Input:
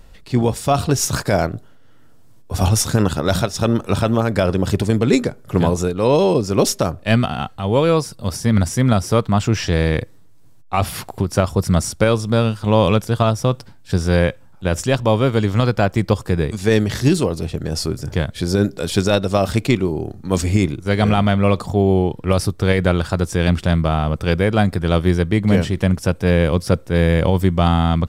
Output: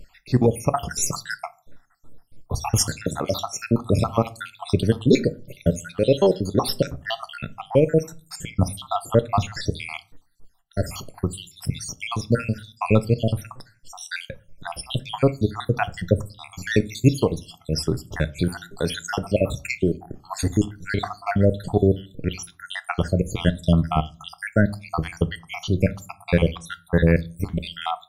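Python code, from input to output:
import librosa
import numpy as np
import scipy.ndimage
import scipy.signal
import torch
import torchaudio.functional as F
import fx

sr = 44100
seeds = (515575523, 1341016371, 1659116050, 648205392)

y = fx.spec_dropout(x, sr, seeds[0], share_pct=74)
y = fx.highpass(y, sr, hz=230.0, slope=6, at=(3.03, 3.65))
y = fx.peak_eq(y, sr, hz=3400.0, db=-12.5, octaves=0.37, at=(7.61, 8.4))
y = fx.room_shoebox(y, sr, seeds[1], volume_m3=170.0, walls='furnished', distance_m=0.33)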